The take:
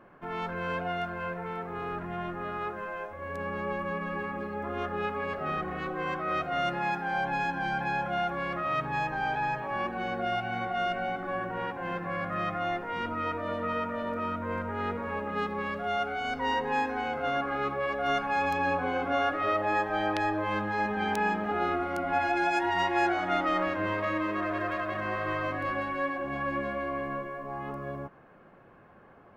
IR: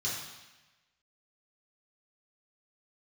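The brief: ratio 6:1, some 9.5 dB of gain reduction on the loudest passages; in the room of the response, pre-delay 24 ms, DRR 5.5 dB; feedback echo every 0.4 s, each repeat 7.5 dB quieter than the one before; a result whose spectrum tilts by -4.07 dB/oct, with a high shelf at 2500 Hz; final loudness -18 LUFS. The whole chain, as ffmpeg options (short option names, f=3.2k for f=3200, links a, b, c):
-filter_complex "[0:a]highshelf=f=2.5k:g=-3,acompressor=threshold=-34dB:ratio=6,aecho=1:1:400|800|1200|1600|2000:0.422|0.177|0.0744|0.0312|0.0131,asplit=2[a][b];[1:a]atrim=start_sample=2205,adelay=24[c];[b][c]afir=irnorm=-1:irlink=0,volume=-10.5dB[d];[a][d]amix=inputs=2:normalize=0,volume=18dB"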